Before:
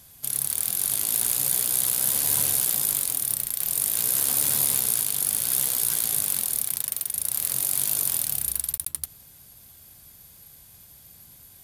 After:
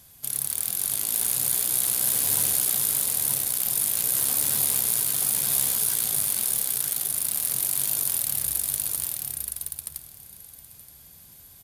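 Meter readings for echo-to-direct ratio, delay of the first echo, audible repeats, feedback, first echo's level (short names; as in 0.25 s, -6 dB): -3.5 dB, 0.924 s, 2, 15%, -3.5 dB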